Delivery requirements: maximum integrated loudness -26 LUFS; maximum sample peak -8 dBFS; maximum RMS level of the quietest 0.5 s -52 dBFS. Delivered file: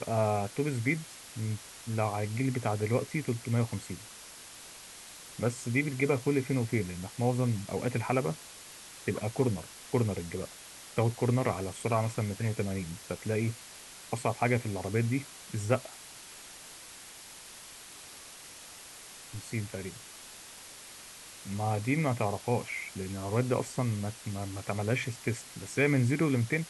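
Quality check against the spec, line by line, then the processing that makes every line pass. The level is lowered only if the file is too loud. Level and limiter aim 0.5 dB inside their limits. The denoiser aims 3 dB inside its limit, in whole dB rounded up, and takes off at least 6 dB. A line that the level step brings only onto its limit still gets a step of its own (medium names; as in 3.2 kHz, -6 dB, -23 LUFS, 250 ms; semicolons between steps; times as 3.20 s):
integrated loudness -32.0 LUFS: pass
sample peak -12.5 dBFS: pass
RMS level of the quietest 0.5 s -49 dBFS: fail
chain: noise reduction 6 dB, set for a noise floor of -49 dBFS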